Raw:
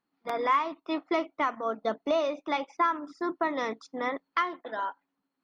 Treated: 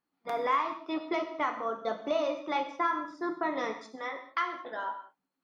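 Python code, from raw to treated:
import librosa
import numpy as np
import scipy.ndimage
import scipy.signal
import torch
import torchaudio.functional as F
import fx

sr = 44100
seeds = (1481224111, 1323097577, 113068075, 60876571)

y = fx.highpass(x, sr, hz=fx.line((3.95, 1200.0), (4.54, 300.0)), slope=6, at=(3.95, 4.54), fade=0.02)
y = fx.rev_gated(y, sr, seeds[0], gate_ms=240, shape='falling', drr_db=4.0)
y = y * librosa.db_to_amplitude(-3.5)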